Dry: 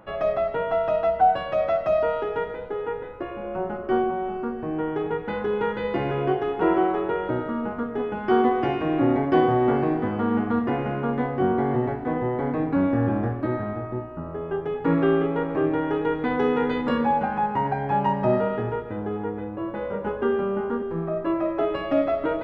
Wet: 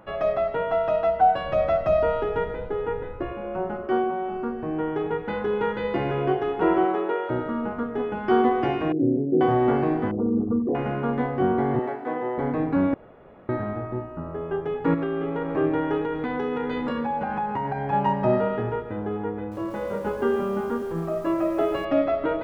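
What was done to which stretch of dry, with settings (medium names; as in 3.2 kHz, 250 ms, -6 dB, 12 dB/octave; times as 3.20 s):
1.44–3.33 s: bass shelf 160 Hz +12 dB
3.86–4.32 s: bass shelf 110 Hz -11.5 dB
6.85–7.29 s: high-pass 130 Hz -> 370 Hz 24 dB/octave
8.92–9.41 s: elliptic band-pass 120–480 Hz
10.11–10.75 s: resonances exaggerated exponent 3
11.79–12.38 s: high-pass 350 Hz
12.94–13.49 s: room tone
14.94–15.52 s: compression, threshold -23 dBFS
16.02–17.93 s: compression, threshold -23 dBFS
19.38–21.85 s: bit-crushed delay 136 ms, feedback 55%, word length 7-bit, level -13 dB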